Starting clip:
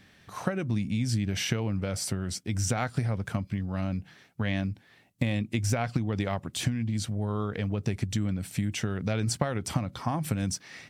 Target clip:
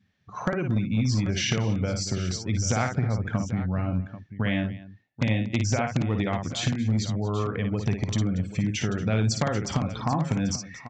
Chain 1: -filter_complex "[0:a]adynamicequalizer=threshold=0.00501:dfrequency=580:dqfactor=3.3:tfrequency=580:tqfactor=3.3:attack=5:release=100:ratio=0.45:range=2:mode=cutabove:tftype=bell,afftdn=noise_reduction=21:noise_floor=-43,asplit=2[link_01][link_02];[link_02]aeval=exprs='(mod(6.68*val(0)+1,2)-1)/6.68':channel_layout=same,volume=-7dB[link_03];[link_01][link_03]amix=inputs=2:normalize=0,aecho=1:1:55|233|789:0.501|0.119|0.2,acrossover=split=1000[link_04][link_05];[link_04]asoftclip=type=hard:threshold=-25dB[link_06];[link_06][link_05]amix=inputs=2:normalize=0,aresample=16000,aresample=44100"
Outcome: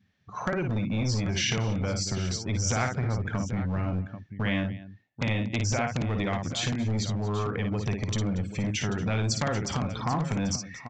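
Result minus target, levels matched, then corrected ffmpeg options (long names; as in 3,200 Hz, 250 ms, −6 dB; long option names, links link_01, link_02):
hard clipping: distortion +13 dB
-filter_complex "[0:a]adynamicequalizer=threshold=0.00501:dfrequency=580:dqfactor=3.3:tfrequency=580:tqfactor=3.3:attack=5:release=100:ratio=0.45:range=2:mode=cutabove:tftype=bell,afftdn=noise_reduction=21:noise_floor=-43,asplit=2[link_01][link_02];[link_02]aeval=exprs='(mod(6.68*val(0)+1,2)-1)/6.68':channel_layout=same,volume=-7dB[link_03];[link_01][link_03]amix=inputs=2:normalize=0,aecho=1:1:55|233|789:0.501|0.119|0.2,acrossover=split=1000[link_04][link_05];[link_04]asoftclip=type=hard:threshold=-17.5dB[link_06];[link_06][link_05]amix=inputs=2:normalize=0,aresample=16000,aresample=44100"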